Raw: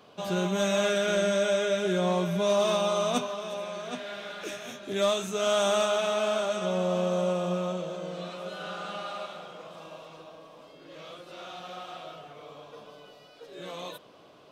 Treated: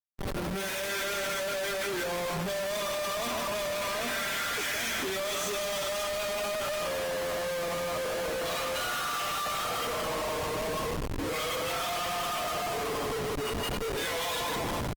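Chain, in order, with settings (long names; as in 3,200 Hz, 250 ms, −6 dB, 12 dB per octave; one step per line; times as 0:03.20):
downward compressor 8 to 1, threshold −35 dBFS, peak gain reduction 13.5 dB
soft clipping −30 dBFS, distortion −22 dB
low-pass filter 9,800 Hz 24 dB per octave
speed change −3%
low-shelf EQ 440 Hz −9.5 dB
noise reduction from a noise print of the clip's start 15 dB
single-tap delay 158 ms −7.5 dB
automatic gain control gain up to 13.5 dB
dynamic equaliser 1,900 Hz, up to +6 dB, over −50 dBFS, Q 2.6
echo machine with several playback heads 157 ms, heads all three, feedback 44%, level −20 dB
comparator with hysteresis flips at −45 dBFS
Opus 24 kbit/s 48,000 Hz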